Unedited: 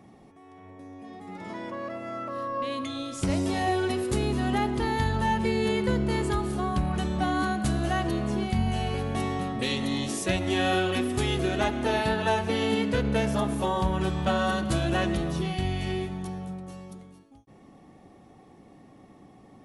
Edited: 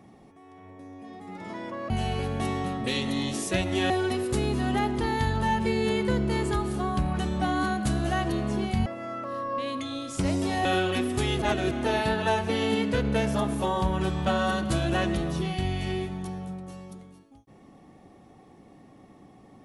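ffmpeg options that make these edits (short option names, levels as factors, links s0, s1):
-filter_complex "[0:a]asplit=7[s0][s1][s2][s3][s4][s5][s6];[s0]atrim=end=1.902[s7];[s1]atrim=start=8.648:end=10.652[s8];[s2]atrim=start=3.688:end=8.652[s9];[s3]atrim=start=1.898:end=3.692[s10];[s4]atrim=start=10.648:end=11.422[s11];[s5]atrim=start=11.418:end=11.712,asetpts=PTS-STARTPTS,areverse[s12];[s6]atrim=start=11.708[s13];[s7][s8]acrossfade=d=0.004:c1=hsin:c2=hsin[s14];[s14][s9]acrossfade=d=0.004:c1=hsin:c2=hsin[s15];[s15][s10]acrossfade=d=0.004:c1=hsin:c2=hsin[s16];[s16][s11]acrossfade=d=0.004:c1=hsin:c2=hsin[s17];[s17][s12]acrossfade=d=0.004:c1=hsin:c2=hsin[s18];[s18][s13]acrossfade=d=0.004:c1=hsin:c2=hsin"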